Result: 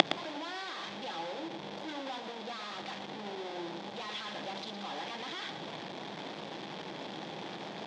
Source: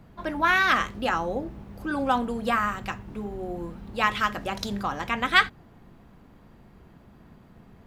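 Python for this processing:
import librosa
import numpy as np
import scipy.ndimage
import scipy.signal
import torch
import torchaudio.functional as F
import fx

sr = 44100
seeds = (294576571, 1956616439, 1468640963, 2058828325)

y = np.sign(x) * np.sqrt(np.mean(np.square(x)))
y = fx.peak_eq(y, sr, hz=3300.0, db=13.0, octaves=0.45)
y = fx.hum_notches(y, sr, base_hz=60, count=7)
y = fx.gate_flip(y, sr, shuts_db=-21.0, range_db=-31)
y = fx.cabinet(y, sr, low_hz=170.0, low_slope=24, high_hz=5400.0, hz=(230.0, 330.0, 570.0, 820.0, 1300.0, 3000.0), db=(-6, 4, 3, 6, -5, -7))
y = y + 10.0 ** (-9.5 / 20.0) * np.pad(y, (int(114 * sr / 1000.0), 0))[:len(y)]
y = y * 10.0 ** (18.0 / 20.0)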